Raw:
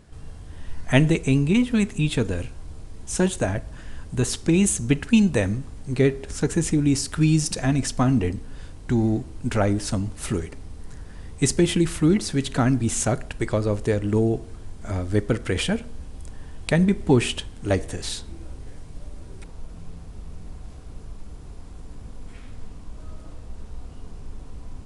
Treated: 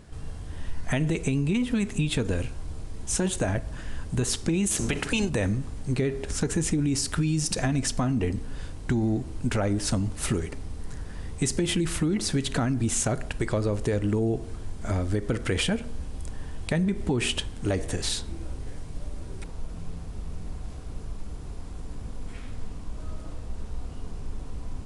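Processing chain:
0:04.70–0:05.28: ceiling on every frequency bin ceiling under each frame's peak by 16 dB
brickwall limiter −15.5 dBFS, peak gain reduction 11.5 dB
downward compressor, threshold −24 dBFS, peak gain reduction 5.5 dB
level +2.5 dB

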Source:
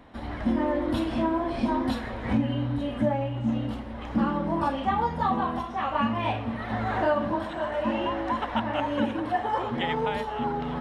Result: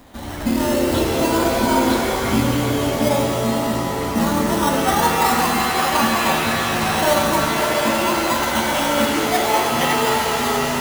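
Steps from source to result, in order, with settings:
in parallel at −6 dB: sample-and-hold swept by an LFO 15×, swing 60% 0.48 Hz
on the sum: high-shelf EQ 3,500 Hz +12 dB
reverb with rising layers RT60 3.4 s, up +7 semitones, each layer −2 dB, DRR 0.5 dB
level +1 dB

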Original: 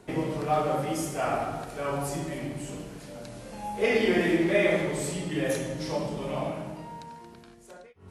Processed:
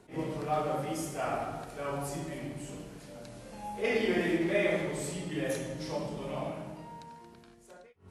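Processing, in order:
level that may rise only so fast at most 220 dB per second
level −5 dB

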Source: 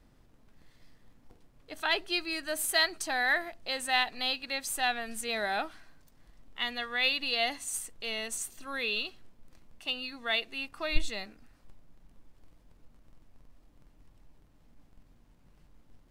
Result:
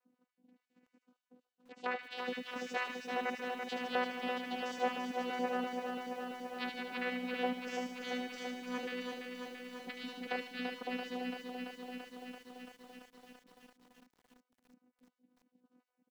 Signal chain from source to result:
time-frequency cells dropped at random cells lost 50%
noise gate −58 dBFS, range −9 dB
channel vocoder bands 8, saw 249 Hz
pitch-shifted copies added −5 semitones −16 dB
treble cut that deepens with the level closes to 1,800 Hz, closed at −31.5 dBFS
delay with a high-pass on its return 75 ms, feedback 56%, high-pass 2,400 Hz, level −4.5 dB
feedback echo at a low word length 337 ms, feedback 80%, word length 10 bits, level −5 dB
level −3 dB

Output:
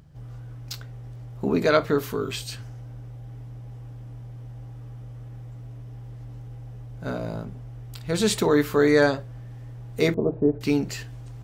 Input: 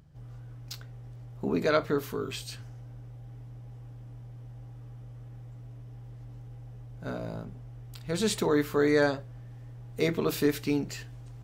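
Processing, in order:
0:10.14–0:10.61: Chebyshev low-pass filter 700 Hz, order 3
level +5.5 dB

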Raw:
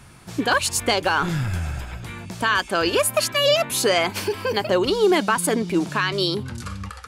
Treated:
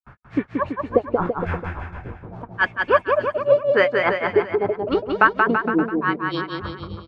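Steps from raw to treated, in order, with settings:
granular cloud 176 ms, grains 3.5 per second, spray 100 ms, pitch spread up and down by 0 semitones
auto-filter low-pass sine 0.83 Hz 480–2,000 Hz
harmonic and percussive parts rebalanced harmonic −3 dB
on a send: bouncing-ball delay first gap 180 ms, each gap 0.85×, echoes 5
on the sum: level +3 dB

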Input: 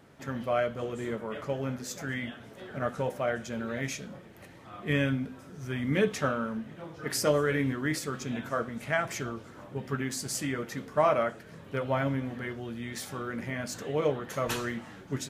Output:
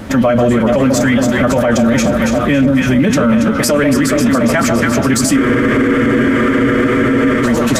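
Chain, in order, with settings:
loose part that buzzes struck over −30 dBFS, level −34 dBFS
low-shelf EQ 110 Hz +9 dB
delay that swaps between a low-pass and a high-pass 274 ms, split 1,100 Hz, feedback 82%, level −6.5 dB
dynamic equaliser 7,700 Hz, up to +4 dB, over −56 dBFS, Q 5.7
speech leveller within 4 dB 2 s
on a send at −14 dB: convolution reverb, pre-delay 3 ms
on the sum: phase-vocoder stretch with locked phases 0.51×
frozen spectrum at 0:05.39, 2.05 s
boost into a limiter +28 dB
level −3.5 dB

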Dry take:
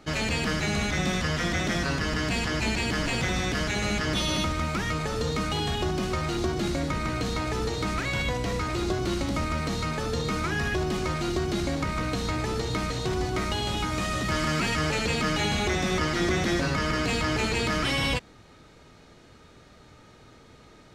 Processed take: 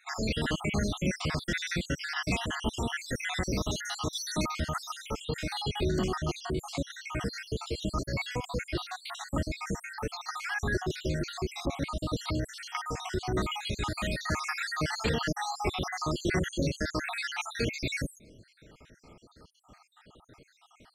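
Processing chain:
time-frequency cells dropped at random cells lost 68%
0:02.99–0:05.11: high-shelf EQ 8,300 Hz +6.5 dB

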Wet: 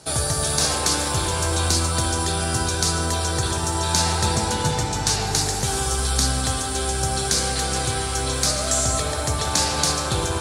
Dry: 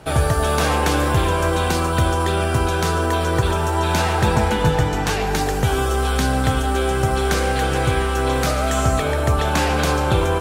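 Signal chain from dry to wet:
high-pass filter 59 Hz
flat-topped bell 6,500 Hz +16 dB
spring reverb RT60 3.7 s, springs 60 ms, chirp 50 ms, DRR 3 dB
level −7 dB

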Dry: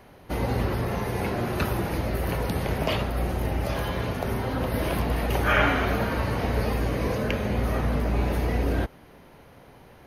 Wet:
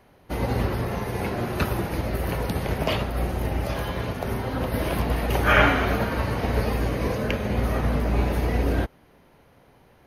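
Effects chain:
expander for the loud parts 1.5 to 1, over −38 dBFS
level +4.5 dB

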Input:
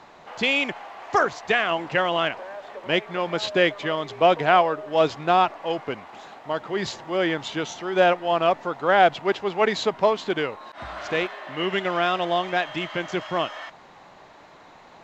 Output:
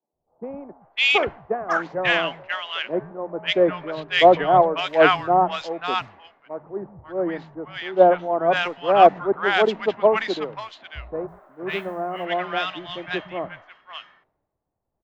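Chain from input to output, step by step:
low-pass that shuts in the quiet parts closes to 660 Hz, open at −14 dBFS
three-band delay without the direct sound mids, lows, highs 120/540 ms, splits 170/980 Hz
0:11.27–0:12.24: background noise blue −62 dBFS
multiband upward and downward expander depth 100%
level +1 dB

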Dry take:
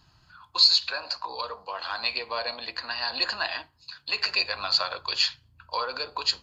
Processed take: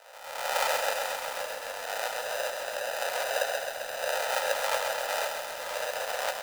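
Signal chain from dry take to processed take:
peak hold with a rise ahead of every peak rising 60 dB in 1.08 s
in parallel at 0 dB: brickwall limiter −14.5 dBFS, peak gain reduction 10 dB
on the sum: decimation without filtering 40×
elliptic high-pass filter 530 Hz, stop band 40 dB
on a send: echo with shifted repeats 89 ms, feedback 49%, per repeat +34 Hz, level −18 dB
on the sum: feedback echo at a low word length 132 ms, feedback 80%, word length 7 bits, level −5.5 dB
level −5.5 dB

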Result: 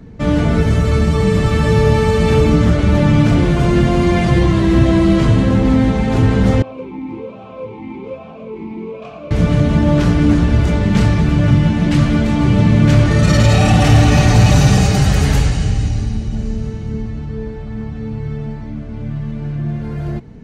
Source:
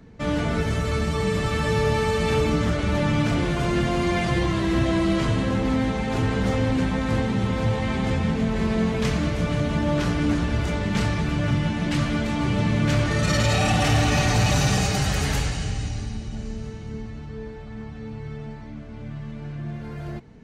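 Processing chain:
low-shelf EQ 480 Hz +8 dB
0:06.62–0:09.31: formant filter swept between two vowels a-u 1.2 Hz
level +4 dB

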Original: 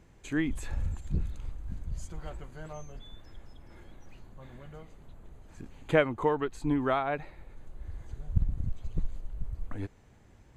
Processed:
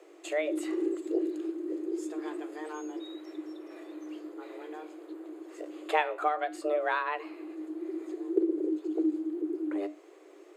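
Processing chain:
parametric band 590 Hz −6 dB 0.26 octaves
in parallel at +1.5 dB: downward compressor, threshold −39 dBFS, peak gain reduction 20 dB
on the sum: frequency shifter +300 Hz
flanger 0.29 Hz, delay 9.9 ms, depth 8.8 ms, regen −78%
level +1.5 dB

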